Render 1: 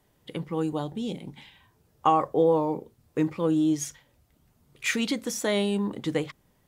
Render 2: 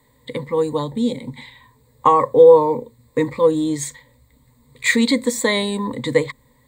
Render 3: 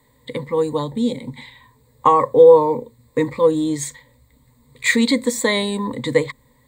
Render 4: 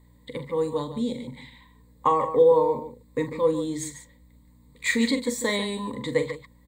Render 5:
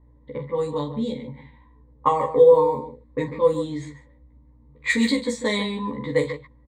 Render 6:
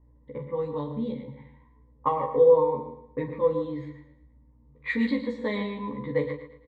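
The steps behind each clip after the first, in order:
EQ curve with evenly spaced ripples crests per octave 1, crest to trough 17 dB; level +5.5 dB
no processing that can be heard
mains hum 60 Hz, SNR 29 dB; on a send: loudspeakers that aren't time-aligned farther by 15 metres −11 dB, 50 metres −11 dB; on the sum: level −7.5 dB
low-pass that shuts in the quiet parts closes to 940 Hz, open at −18.5 dBFS; double-tracking delay 14 ms −2 dB
high-frequency loss of the air 360 metres; on a send: repeating echo 112 ms, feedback 39%, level −12 dB; on the sum: level −4 dB

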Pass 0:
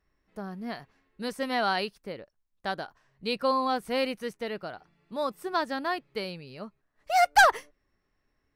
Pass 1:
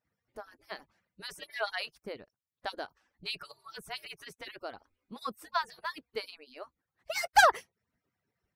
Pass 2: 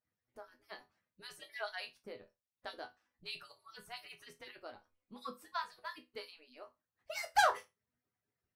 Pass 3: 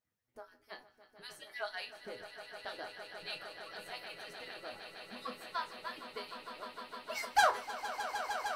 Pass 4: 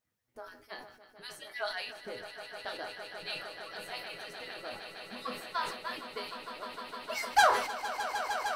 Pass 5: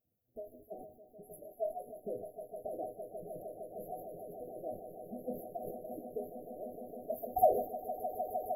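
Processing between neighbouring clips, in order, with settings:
harmonic-percussive split with one part muted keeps percussive; level −1.5 dB
resonators tuned to a chord E2 major, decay 0.22 s; level +2.5 dB
echo that builds up and dies away 153 ms, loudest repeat 8, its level −12 dB; level +1 dB
level that may fall only so fast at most 76 dB per second; level +3.5 dB
linear-phase brick-wall band-stop 770–11,000 Hz; level +3 dB

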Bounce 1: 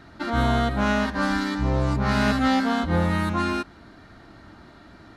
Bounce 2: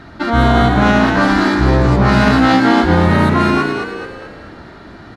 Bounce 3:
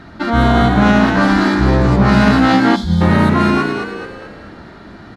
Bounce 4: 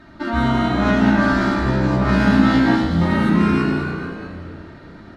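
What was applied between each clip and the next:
high-shelf EQ 6,600 Hz −8.5 dB; on a send: echo with shifted repeats 215 ms, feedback 46%, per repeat +59 Hz, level −5.5 dB; on the sum: boost into a limiter +11.5 dB; level −1 dB
gain on a spectral selection 0:02.76–0:03.01, 220–3,100 Hz −18 dB; parametric band 200 Hz +4.5 dB 0.39 octaves; level −1 dB
healed spectral selection 0:03.22–0:03.74, 350–990 Hz after; convolution reverb RT60 2.0 s, pre-delay 3 ms, DRR −1.5 dB; level −9.5 dB

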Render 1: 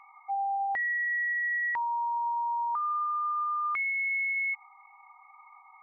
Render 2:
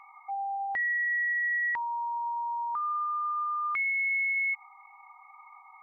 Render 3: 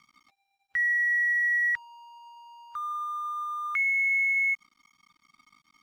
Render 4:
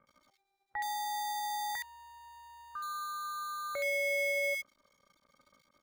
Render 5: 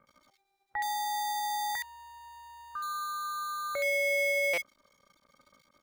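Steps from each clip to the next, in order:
dynamic equaliser 770 Hz, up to −5 dB, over −41 dBFS, Q 0.98; level +2 dB
Chebyshev band-stop filter 130–1,400 Hz, order 3; dead-zone distortion −57 dBFS; level +4.5 dB
in parallel at −3 dB: decimation without filtering 16×; on the sum: multiband delay without the direct sound lows, highs 70 ms, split 1,900 Hz; level −7 dB
buffer that repeats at 0:04.53, samples 256, times 7; level +3.5 dB

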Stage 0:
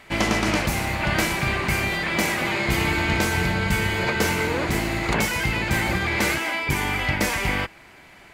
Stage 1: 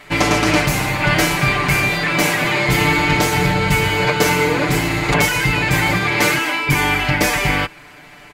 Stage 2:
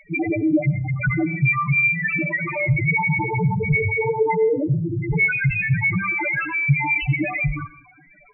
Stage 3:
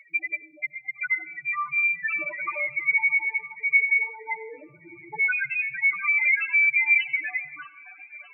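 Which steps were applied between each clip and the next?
comb filter 6.8 ms, depth 94%; level +4 dB
spectral peaks only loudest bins 2; convolution reverb RT60 0.45 s, pre-delay 73 ms, DRR 15.5 dB; level +3.5 dB
auto-filter high-pass sine 0.34 Hz 860–2,300 Hz; delay with a high-pass on its return 620 ms, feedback 70%, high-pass 1,500 Hz, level −21.5 dB; phaser whose notches keep moving one way falling 0.33 Hz; level −3 dB

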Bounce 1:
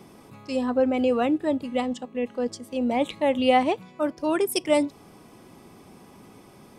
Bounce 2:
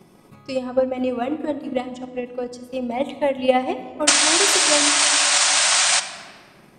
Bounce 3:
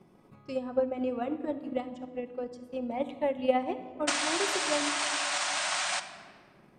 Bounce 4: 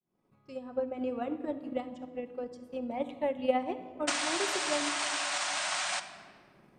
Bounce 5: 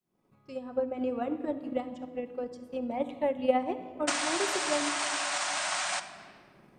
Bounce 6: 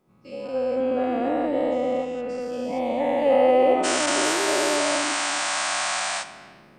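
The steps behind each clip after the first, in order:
sound drawn into the spectrogram noise, 0:04.07–0:06.00, 560–9,300 Hz −15 dBFS; rectangular room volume 2,300 cubic metres, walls mixed, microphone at 0.97 metres; transient designer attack +8 dB, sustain −1 dB; level −3.5 dB
high-shelf EQ 3,300 Hz −11 dB; level −8 dB
fade in at the beginning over 1.13 s; level −2 dB
dynamic equaliser 3,400 Hz, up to −3 dB, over −48 dBFS, Q 0.82; level +2.5 dB
every bin's largest magnitude spread in time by 480 ms

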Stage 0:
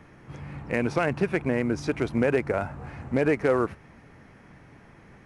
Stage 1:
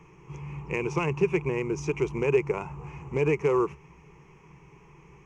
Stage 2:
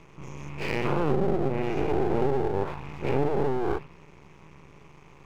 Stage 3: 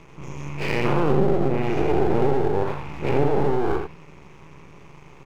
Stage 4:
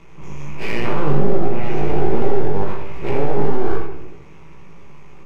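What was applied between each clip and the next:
EQ curve with evenly spaced ripples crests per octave 0.74, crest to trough 17 dB; level −5 dB
every bin's largest magnitude spread in time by 240 ms; treble cut that deepens with the level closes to 360 Hz, closed at −14.5 dBFS; half-wave rectification
single-tap delay 84 ms −6.5 dB; level +4 dB
on a send at −6.5 dB: convolution reverb RT60 0.95 s, pre-delay 5 ms; on the sum: chorus effect 1.3 Hz, delay 17.5 ms, depth 2.3 ms; level +2.5 dB

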